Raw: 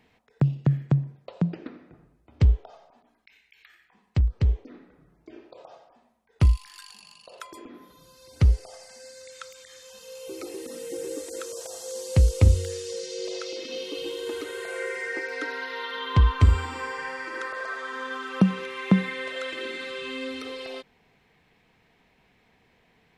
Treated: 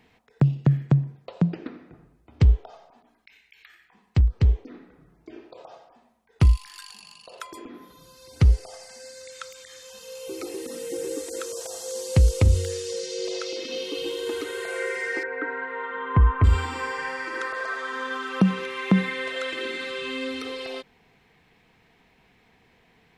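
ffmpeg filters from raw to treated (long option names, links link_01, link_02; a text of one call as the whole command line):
ffmpeg -i in.wav -filter_complex "[0:a]asettb=1/sr,asplit=3[link_01][link_02][link_03];[link_01]atrim=end=15.234[link_04];[link_02]atrim=start=15.23:end=16.44,asetpts=PTS-STARTPTS,afade=type=in:duration=0.004:curve=qsin,afade=type=out:start_time=1.206:duration=0.004:curve=qsin,lowpass=frequency=1900:width=0.5412,lowpass=frequency=1900:width=1.3066[link_05];[link_03]atrim=start=16.436[link_06];[link_04][link_05]acrossfade=duration=0.004:curve1=hsin:curve2=qsin[link_07];[link_07][link_06]acrossfade=duration=0.004:curve1=qsin:curve2=hsin,bandreject=frequency=580:width=12,alimiter=level_in=11dB:limit=-1dB:release=50:level=0:latency=1,volume=-8dB" out.wav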